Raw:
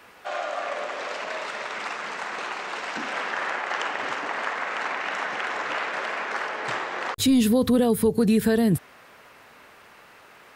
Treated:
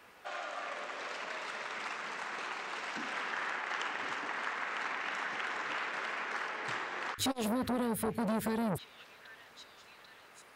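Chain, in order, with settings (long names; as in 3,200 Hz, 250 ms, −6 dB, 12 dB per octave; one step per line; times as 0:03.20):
dynamic equaliser 600 Hz, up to −7 dB, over −39 dBFS, Q 1.6
on a send: echo through a band-pass that steps 790 ms, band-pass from 1,700 Hz, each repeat 0.7 octaves, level −11.5 dB
on the sum: saturating transformer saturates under 870 Hz
level −7.5 dB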